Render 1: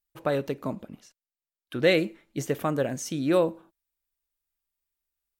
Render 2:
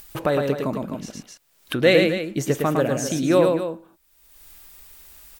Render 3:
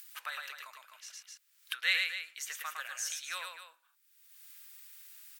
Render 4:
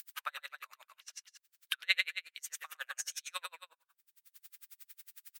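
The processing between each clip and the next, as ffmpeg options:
ffmpeg -i in.wav -af "aecho=1:1:107.9|256.6:0.631|0.282,acompressor=mode=upward:threshold=-25dB:ratio=2.5,volume=4.5dB" out.wav
ffmpeg -i in.wav -af "highpass=frequency=1400:width=0.5412,highpass=frequency=1400:width=1.3066,volume=-6dB" out.wav
ffmpeg -i in.wav -af "aeval=exprs='val(0)*pow(10,-39*(0.5-0.5*cos(2*PI*11*n/s))/20)':channel_layout=same,volume=4.5dB" out.wav

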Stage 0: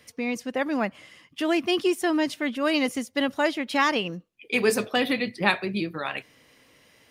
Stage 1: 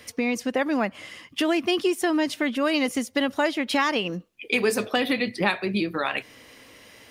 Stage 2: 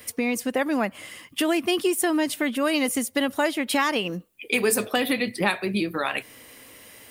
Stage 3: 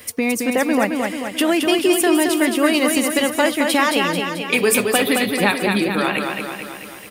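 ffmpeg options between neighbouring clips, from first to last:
ffmpeg -i in.wav -af "equalizer=frequency=150:width_type=o:width=0.22:gain=-12,acompressor=threshold=-32dB:ratio=2.5,volume=8.5dB" out.wav
ffmpeg -i in.wav -af "aexciter=amount=2.5:drive=7.9:freq=7800" out.wav
ffmpeg -i in.wav -af "aecho=1:1:219|438|657|876|1095|1314|1533|1752:0.596|0.34|0.194|0.11|0.0629|0.0358|0.0204|0.0116,volume=5dB" out.wav

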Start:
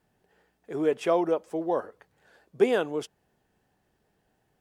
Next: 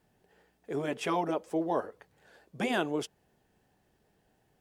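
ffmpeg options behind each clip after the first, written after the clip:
ffmpeg -i in.wav -af "afftfilt=real='re*lt(hypot(re,im),0.398)':imag='im*lt(hypot(re,im),0.398)':win_size=1024:overlap=0.75,equalizer=frequency=1300:width=1.5:gain=-2.5,volume=1.5dB" out.wav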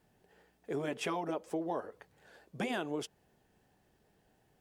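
ffmpeg -i in.wav -af "acompressor=threshold=-32dB:ratio=6" out.wav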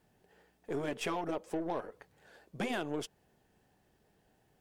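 ffmpeg -i in.wav -af "aeval=exprs='0.0668*(cos(1*acos(clip(val(0)/0.0668,-1,1)))-cos(1*PI/2))+0.00335*(cos(8*acos(clip(val(0)/0.0668,-1,1)))-cos(8*PI/2))':channel_layout=same" out.wav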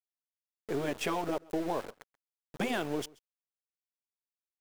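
ffmpeg -i in.wav -af "aeval=exprs='val(0)*gte(abs(val(0)),0.00631)':channel_layout=same,aecho=1:1:132:0.0631,volume=3dB" out.wav

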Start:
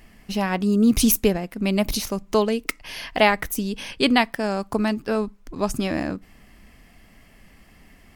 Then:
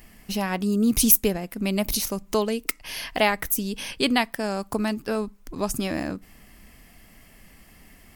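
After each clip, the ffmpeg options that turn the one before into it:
ffmpeg -i in.wav -filter_complex "[0:a]highshelf=frequency=7900:gain=12,asplit=2[link_01][link_02];[link_02]acompressor=threshold=-27dB:ratio=6,volume=-2.5dB[link_03];[link_01][link_03]amix=inputs=2:normalize=0,volume=-5.5dB" out.wav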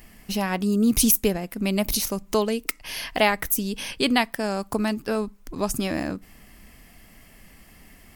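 ffmpeg -i in.wav -af "alimiter=level_in=6.5dB:limit=-1dB:release=50:level=0:latency=1,volume=-5.5dB" out.wav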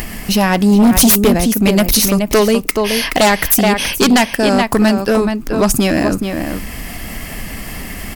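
ffmpeg -i in.wav -filter_complex "[0:a]acompressor=mode=upward:threshold=-30dB:ratio=2.5,asplit=2[link_01][link_02];[link_02]adelay=425.7,volume=-7dB,highshelf=frequency=4000:gain=-9.58[link_03];[link_01][link_03]amix=inputs=2:normalize=0,aeval=exprs='0.531*sin(PI/2*3.16*val(0)/0.531)':channel_layout=same" out.wav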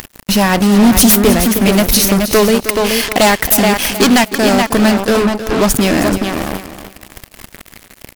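ffmpeg -i in.wav -af "acrusher=bits=2:mix=0:aa=0.5,aecho=1:1:314|628|942:0.251|0.0553|0.0122,volume=1dB" out.wav

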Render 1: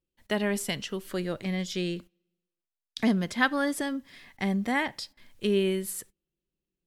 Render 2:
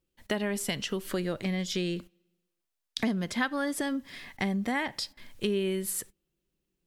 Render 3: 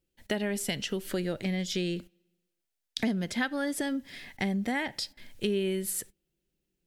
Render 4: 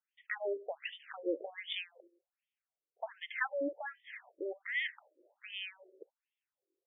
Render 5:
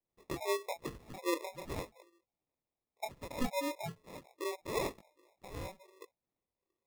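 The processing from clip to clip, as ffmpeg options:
ffmpeg -i in.wav -af "acompressor=threshold=-35dB:ratio=3,volume=6dB" out.wav
ffmpeg -i in.wav -af "equalizer=frequency=1100:width_type=o:width=0.38:gain=-9.5" out.wav
ffmpeg -i in.wav -af "afftfilt=real='re*between(b*sr/1024,410*pow(2600/410,0.5+0.5*sin(2*PI*1.3*pts/sr))/1.41,410*pow(2600/410,0.5+0.5*sin(2*PI*1.3*pts/sr))*1.41)':imag='im*between(b*sr/1024,410*pow(2600/410,0.5+0.5*sin(2*PI*1.3*pts/sr))/1.41,410*pow(2600/410,0.5+0.5*sin(2*PI*1.3*pts/sr))*1.41)':win_size=1024:overlap=0.75,volume=1dB" out.wav
ffmpeg -i in.wav -af "flanger=delay=19:depth=6.1:speed=1,acrusher=samples=29:mix=1:aa=0.000001,volume=3.5dB" out.wav

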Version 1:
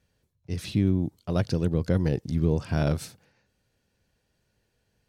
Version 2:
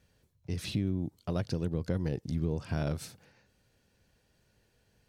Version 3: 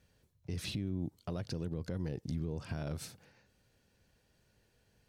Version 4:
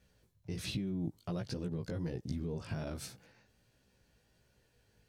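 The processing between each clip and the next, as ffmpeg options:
ffmpeg -i in.wav -af "acompressor=threshold=-39dB:ratio=2,volume=3dB" out.wav
ffmpeg -i in.wav -af "alimiter=level_in=2dB:limit=-24dB:level=0:latency=1:release=63,volume=-2dB,volume=-1.5dB" out.wav
ffmpeg -i in.wav -af "flanger=delay=15.5:depth=3:speed=1.3,volume=3.5dB" out.wav

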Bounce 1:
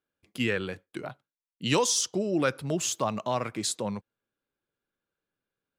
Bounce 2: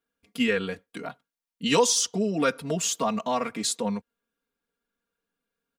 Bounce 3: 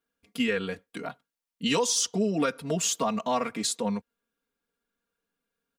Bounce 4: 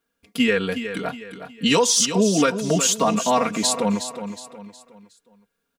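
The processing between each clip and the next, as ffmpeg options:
ffmpeg -i in.wav -af "aecho=1:1:4.3:0.96" out.wav
ffmpeg -i in.wav -af "alimiter=limit=-15dB:level=0:latency=1:release=295" out.wav
ffmpeg -i in.wav -af "aecho=1:1:365|730|1095|1460:0.316|0.12|0.0457|0.0174,volume=7.5dB" out.wav

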